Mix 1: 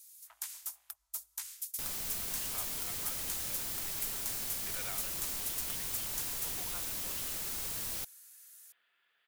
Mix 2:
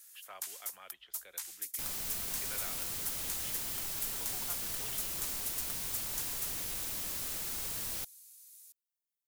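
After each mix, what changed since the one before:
speech: entry −2.25 s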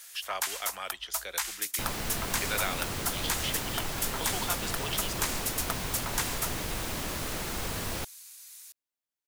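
speech: remove high-frequency loss of the air 470 metres
first sound +8.5 dB
master: remove first-order pre-emphasis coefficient 0.8

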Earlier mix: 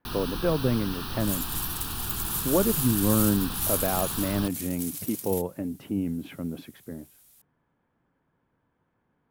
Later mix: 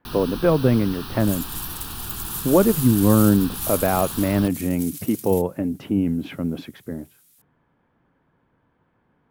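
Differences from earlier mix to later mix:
speech +7.5 dB
second sound: add high-pass filter 1,300 Hz

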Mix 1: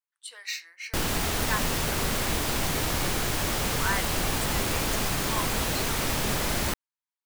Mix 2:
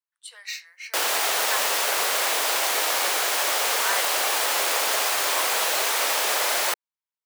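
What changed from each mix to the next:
background +6.5 dB
master: add high-pass filter 510 Hz 24 dB per octave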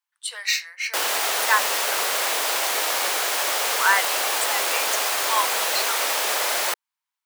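speech +11.0 dB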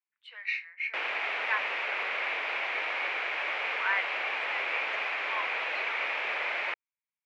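speech −4.0 dB
master: add transistor ladder low-pass 2,600 Hz, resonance 65%

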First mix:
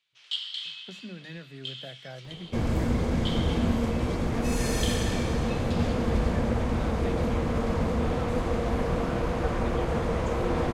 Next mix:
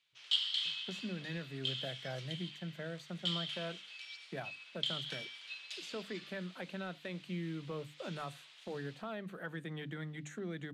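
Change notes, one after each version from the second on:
second sound: muted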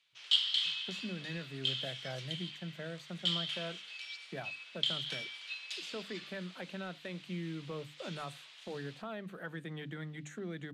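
background +5.5 dB
reverb: off

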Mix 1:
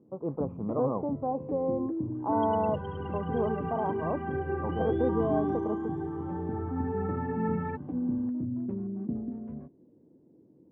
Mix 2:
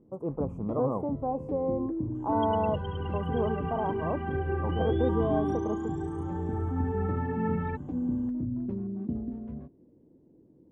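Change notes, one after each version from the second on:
master: remove band-pass filter 110–2,100 Hz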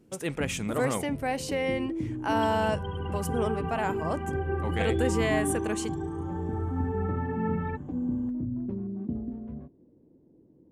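speech: remove elliptic low-pass filter 1,100 Hz, stop band 40 dB
second sound: send on

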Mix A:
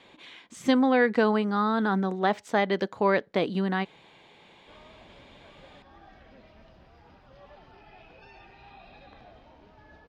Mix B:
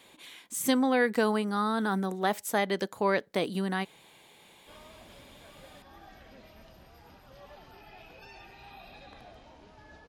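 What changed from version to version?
speech −4.0 dB
master: remove high-frequency loss of the air 160 metres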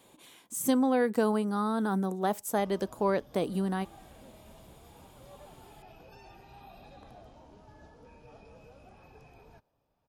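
background: entry −2.10 s
master: add octave-band graphic EQ 125/2,000/4,000 Hz +3/−9/−6 dB

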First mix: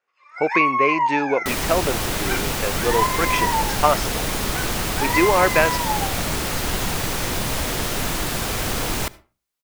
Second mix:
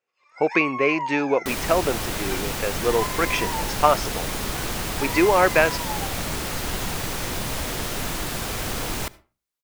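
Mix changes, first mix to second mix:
first sound: add parametric band 1,400 Hz −11.5 dB 2.1 octaves
second sound −4.0 dB

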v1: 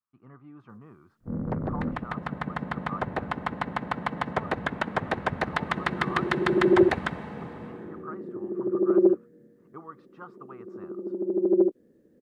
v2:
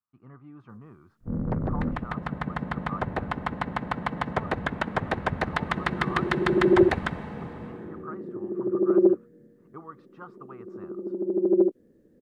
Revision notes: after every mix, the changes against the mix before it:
master: add low-shelf EQ 78 Hz +11 dB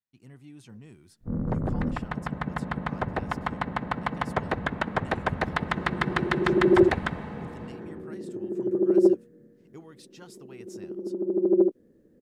speech: remove low-pass with resonance 1,200 Hz, resonance Q 9.9

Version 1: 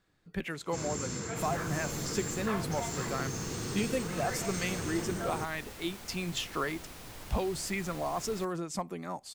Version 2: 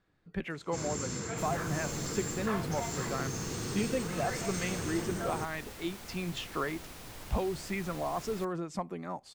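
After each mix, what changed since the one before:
speech: add low-pass filter 2,500 Hz 6 dB per octave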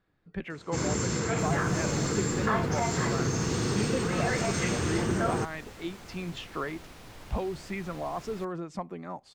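first sound +9.0 dB
master: add high-shelf EQ 7,400 Hz −11 dB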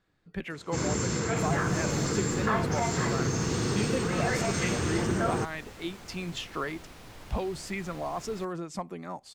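speech: remove low-pass filter 2,500 Hz 6 dB per octave

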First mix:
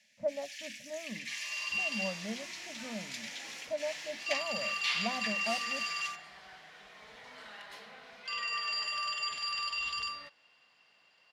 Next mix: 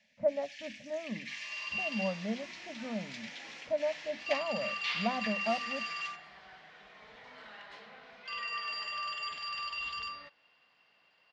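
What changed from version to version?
speech +4.5 dB
master: add high-frequency loss of the air 140 metres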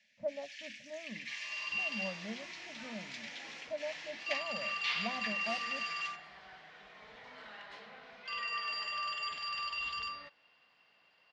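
speech −8.0 dB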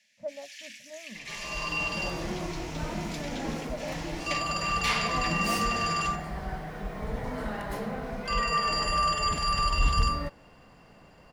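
second sound: remove resonant band-pass 3,500 Hz, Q 1.5
master: remove high-frequency loss of the air 140 metres

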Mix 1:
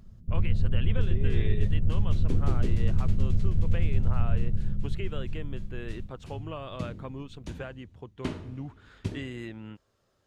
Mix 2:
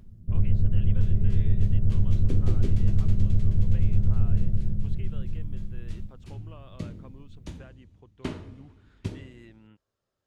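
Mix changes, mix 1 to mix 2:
speech −11.5 dB
first sound: send +10.5 dB

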